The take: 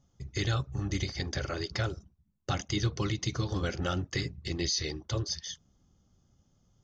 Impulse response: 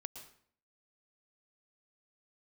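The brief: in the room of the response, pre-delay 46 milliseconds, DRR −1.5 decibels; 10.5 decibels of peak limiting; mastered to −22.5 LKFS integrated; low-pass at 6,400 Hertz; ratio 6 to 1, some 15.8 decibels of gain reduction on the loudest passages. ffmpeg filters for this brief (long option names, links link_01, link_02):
-filter_complex "[0:a]lowpass=6400,acompressor=threshold=-44dB:ratio=6,alimiter=level_in=14dB:limit=-24dB:level=0:latency=1,volume=-14dB,asplit=2[link_01][link_02];[1:a]atrim=start_sample=2205,adelay=46[link_03];[link_02][link_03]afir=irnorm=-1:irlink=0,volume=5dB[link_04];[link_01][link_04]amix=inputs=2:normalize=0,volume=23dB"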